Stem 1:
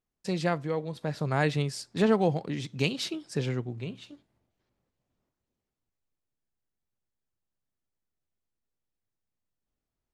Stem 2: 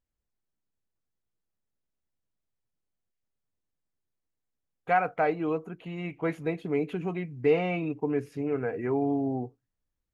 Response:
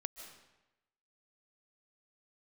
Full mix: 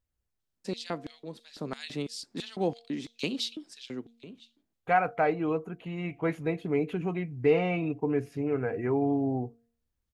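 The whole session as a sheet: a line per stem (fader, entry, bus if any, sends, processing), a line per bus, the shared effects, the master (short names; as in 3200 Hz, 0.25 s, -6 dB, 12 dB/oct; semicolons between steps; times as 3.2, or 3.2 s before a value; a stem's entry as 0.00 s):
-5.0 dB, 0.40 s, no send, LFO high-pass square 3 Hz 250–3600 Hz; auto duck -10 dB, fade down 1.40 s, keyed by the second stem
0.0 dB, 0.00 s, no send, bell 75 Hz +7.5 dB 1.1 oct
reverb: off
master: de-hum 232.8 Hz, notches 3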